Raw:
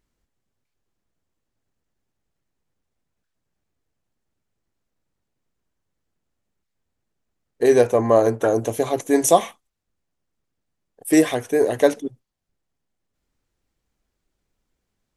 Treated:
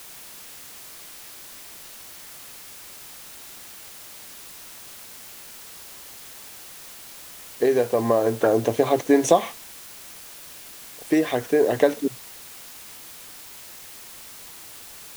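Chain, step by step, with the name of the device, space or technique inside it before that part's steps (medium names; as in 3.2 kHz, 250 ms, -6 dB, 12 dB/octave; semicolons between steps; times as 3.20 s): medium wave at night (band-pass 110–4200 Hz; compression, threshold -17 dBFS, peak gain reduction 9 dB; tremolo 0.32 Hz, depth 40%; whistle 10 kHz -62 dBFS; white noise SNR 15 dB); trim +5 dB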